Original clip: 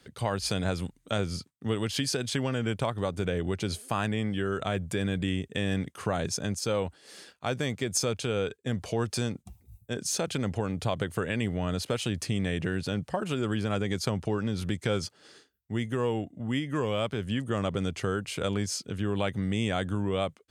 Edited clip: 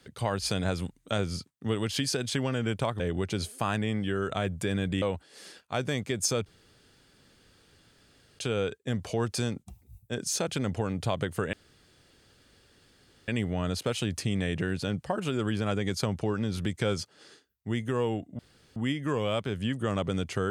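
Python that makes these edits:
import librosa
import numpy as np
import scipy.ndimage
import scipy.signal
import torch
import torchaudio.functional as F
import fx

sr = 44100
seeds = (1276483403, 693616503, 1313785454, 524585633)

y = fx.edit(x, sr, fx.cut(start_s=3.0, length_s=0.3),
    fx.cut(start_s=5.32, length_s=1.42),
    fx.insert_room_tone(at_s=8.18, length_s=1.93),
    fx.insert_room_tone(at_s=11.32, length_s=1.75),
    fx.insert_room_tone(at_s=16.43, length_s=0.37), tone=tone)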